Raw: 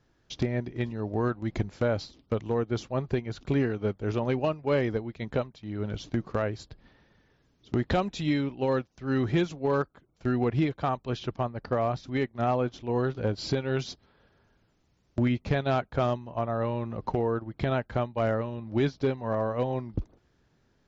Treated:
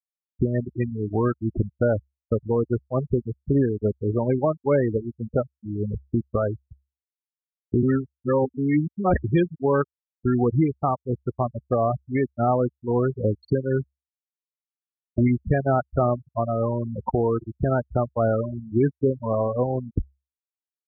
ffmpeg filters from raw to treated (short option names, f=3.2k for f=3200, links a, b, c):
-filter_complex "[0:a]asplit=3[a][b][c];[a]atrim=end=7.832[d];[b]atrim=start=7.828:end=9.242,asetpts=PTS-STARTPTS,areverse[e];[c]atrim=start=9.238[f];[d][e]acrossfade=d=0.004:c1=hsin:c2=hsin[g];[g][f]acrossfade=d=0.004:c1=hsin:c2=hsin,afftfilt=real='re*gte(hypot(re,im),0.0794)':imag='im*gte(hypot(re,im),0.0794)':win_size=1024:overlap=0.75,equalizer=f=68:w=6.4:g=5.5,volume=5.5dB"